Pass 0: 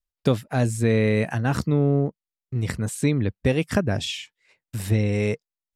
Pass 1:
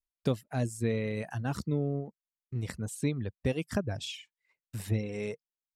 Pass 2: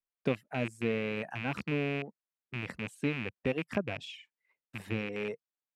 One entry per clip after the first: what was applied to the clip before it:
reverb removal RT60 0.98 s; dynamic bell 1.5 kHz, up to -3 dB, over -40 dBFS, Q 0.72; trim -8 dB
rattle on loud lows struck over -35 dBFS, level -24 dBFS; three-band isolator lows -13 dB, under 160 Hz, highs -14 dB, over 3 kHz

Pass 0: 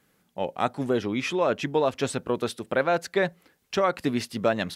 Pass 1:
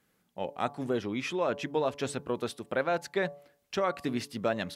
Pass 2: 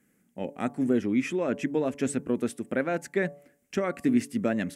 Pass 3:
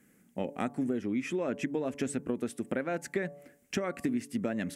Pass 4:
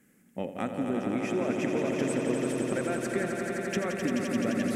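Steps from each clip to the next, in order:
de-hum 143.2 Hz, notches 8; trim -5.5 dB
graphic EQ 250/1000/2000/4000/8000 Hz +11/-8/+7/-12/+8 dB
compression 6:1, threshold -33 dBFS, peak gain reduction 14 dB; trim +4 dB
echo with a slow build-up 86 ms, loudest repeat 5, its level -6.5 dB

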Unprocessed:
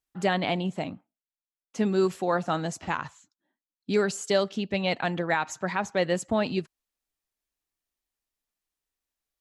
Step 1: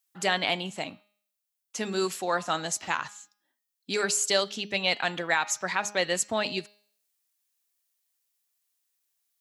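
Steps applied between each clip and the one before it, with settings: tilt EQ +3.5 dB/octave; de-hum 206.4 Hz, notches 29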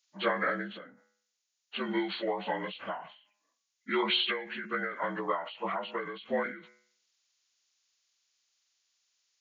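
frequency axis rescaled in octaves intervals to 75%; endings held to a fixed fall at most 100 dB/s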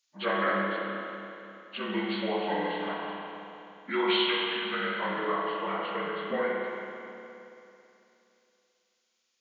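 spring tank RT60 2.9 s, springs 30/56 ms, chirp 35 ms, DRR -3 dB; trim -1.5 dB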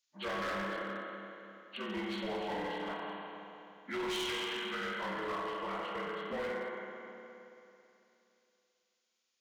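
overload inside the chain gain 28 dB; trim -5.5 dB

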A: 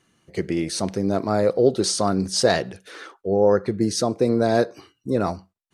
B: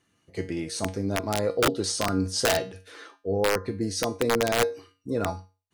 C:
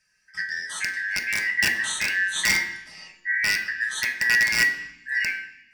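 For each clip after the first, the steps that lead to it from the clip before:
feedback comb 94 Hz, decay 0.31 s, harmonics odd, mix 80%; integer overflow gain 19.5 dB; trim +4.5 dB
four frequency bands reordered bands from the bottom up 3142; reverberation RT60 0.70 s, pre-delay 3 ms, DRR 1.5 dB; trim -2 dB

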